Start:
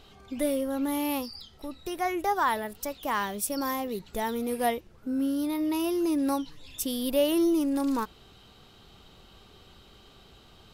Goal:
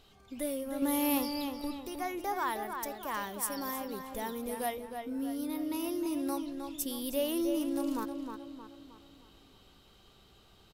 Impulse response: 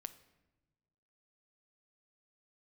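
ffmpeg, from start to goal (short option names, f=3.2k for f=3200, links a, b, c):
-filter_complex "[0:a]highshelf=f=6.8k:g=6.5,asettb=1/sr,asplit=3[a][b][c];[a]atrim=end=0.824[d];[b]atrim=start=0.82:end=1.79,asetpts=PTS-STARTPTS,afade=t=in:d=0.004:c=qsin,afade=t=out:st=0.966:d=0.004:c=qsin,acontrast=60[e];[c]atrim=start=1.786[f];[d][e]acrossfade=d=0.004:c1=hsin:c2=qsin[g];[g][f]acrossfade=d=0.004:c1=qsin:c2=hsin,asplit=2[h][i];[i]adelay=312,lowpass=f=3.4k:p=1,volume=-6dB,asplit=2[j][k];[k]adelay=312,lowpass=f=3.4k:p=1,volume=0.46,asplit=2[l][m];[m]adelay=312,lowpass=f=3.4k:p=1,volume=0.46,asplit=2[n][o];[o]adelay=312,lowpass=f=3.4k:p=1,volume=0.46,asplit=2[p][q];[q]adelay=312,lowpass=f=3.4k:p=1,volume=0.46,asplit=2[r][s];[s]adelay=312,lowpass=f=3.4k:p=1,volume=0.46[t];[j][l][n][p][r][t]amix=inputs=6:normalize=0[u];[h][u]amix=inputs=2:normalize=0,volume=-8dB"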